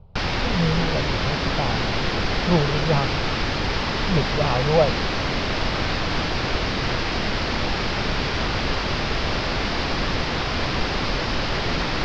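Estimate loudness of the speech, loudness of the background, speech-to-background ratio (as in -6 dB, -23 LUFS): -25.0 LUFS, -24.0 LUFS, -1.0 dB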